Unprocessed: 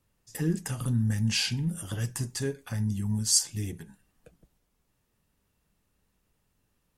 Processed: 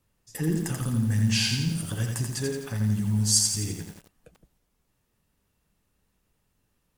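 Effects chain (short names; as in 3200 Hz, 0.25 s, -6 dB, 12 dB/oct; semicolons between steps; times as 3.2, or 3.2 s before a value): lo-fi delay 85 ms, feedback 55%, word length 8-bit, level -3.5 dB; gain +1 dB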